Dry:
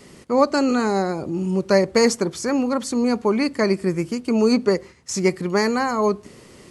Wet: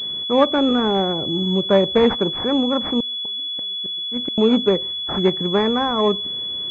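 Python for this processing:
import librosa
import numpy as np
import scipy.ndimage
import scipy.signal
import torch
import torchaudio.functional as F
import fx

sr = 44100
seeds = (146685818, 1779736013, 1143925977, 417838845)

y = fx.gate_flip(x, sr, shuts_db=-14.0, range_db=-37, at=(3.0, 4.38))
y = fx.pwm(y, sr, carrier_hz=3400.0)
y = F.gain(torch.from_numpy(y), 1.5).numpy()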